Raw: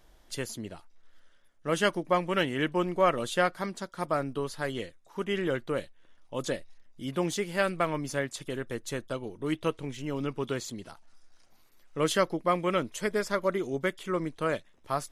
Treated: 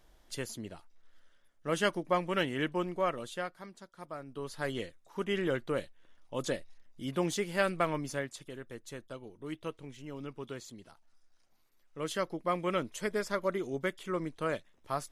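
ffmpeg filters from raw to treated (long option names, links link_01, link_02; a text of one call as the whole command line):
ffmpeg -i in.wav -af "volume=14.5dB,afade=type=out:start_time=2.58:duration=0.97:silence=0.298538,afade=type=in:start_time=4.26:duration=0.42:silence=0.251189,afade=type=out:start_time=7.91:duration=0.59:silence=0.398107,afade=type=in:start_time=12.01:duration=0.68:silence=0.501187" out.wav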